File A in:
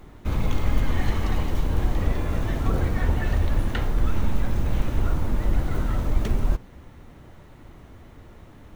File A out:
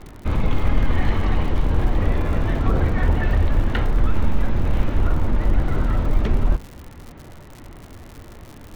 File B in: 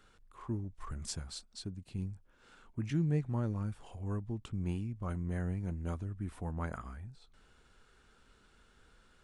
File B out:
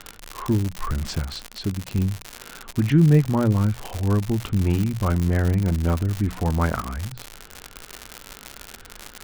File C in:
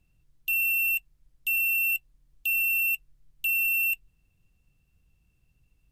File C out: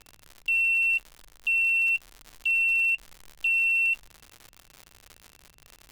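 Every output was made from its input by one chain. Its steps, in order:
LPF 3400 Hz 12 dB/oct; notches 60/120/180 Hz; crackle 130/s -37 dBFS; in parallel at -7 dB: soft clip -24 dBFS; on the sum: match loudness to -23 LUFS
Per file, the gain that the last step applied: +2.5, +13.0, +1.0 dB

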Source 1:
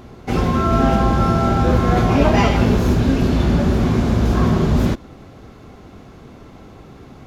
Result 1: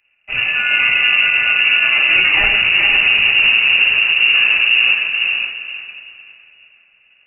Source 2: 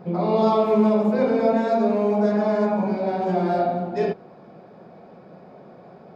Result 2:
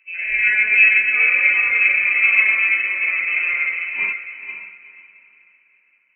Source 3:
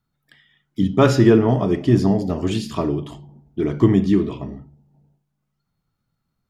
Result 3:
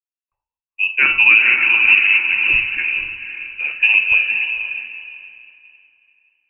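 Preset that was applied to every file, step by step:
inverted band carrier 2800 Hz; on a send: diffused feedback echo 0.505 s, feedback 51%, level -4 dB; on the sum: maximiser +4.5 dB; three-band expander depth 100%; gain -3 dB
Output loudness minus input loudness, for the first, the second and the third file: +6.0, +6.5, +5.5 LU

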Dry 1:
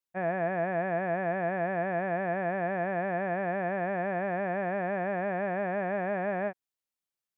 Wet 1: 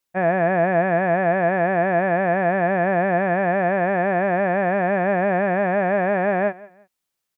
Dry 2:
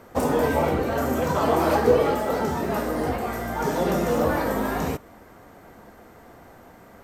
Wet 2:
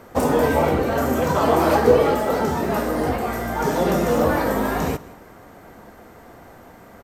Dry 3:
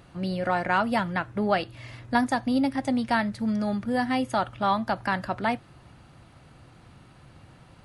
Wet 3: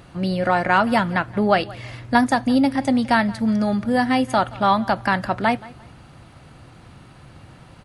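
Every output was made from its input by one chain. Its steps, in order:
feedback echo 0.174 s, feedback 29%, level -21 dB; match loudness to -20 LUFS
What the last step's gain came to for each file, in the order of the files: +11.0, +3.5, +6.5 dB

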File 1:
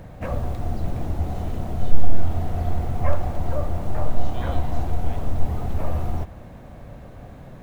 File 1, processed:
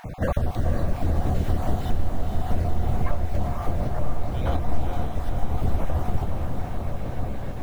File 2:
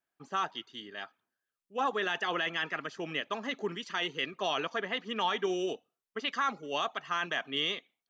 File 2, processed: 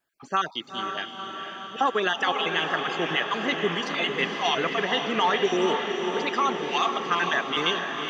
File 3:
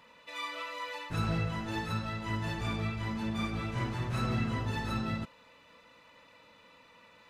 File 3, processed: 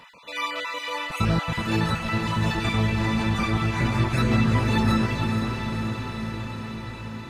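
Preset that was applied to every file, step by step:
random spectral dropouts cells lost 26%; compressor, threshold -26 dBFS; on a send: diffused feedback echo 0.49 s, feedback 71%, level -5.5 dB; on the sum: normalise peaks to -9 dBFS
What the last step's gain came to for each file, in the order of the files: +7.5, +8.5, +10.5 dB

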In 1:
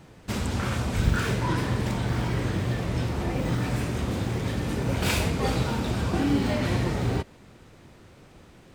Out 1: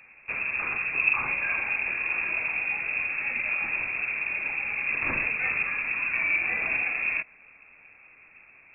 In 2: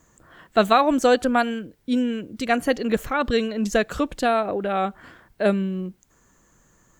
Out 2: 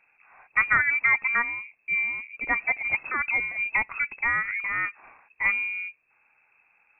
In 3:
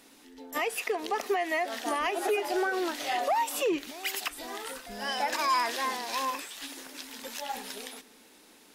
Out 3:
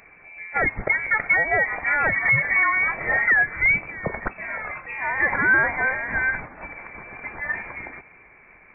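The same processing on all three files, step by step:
inverted band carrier 2600 Hz; normalise peaks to -9 dBFS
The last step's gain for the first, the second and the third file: -3.0, -4.5, +8.5 dB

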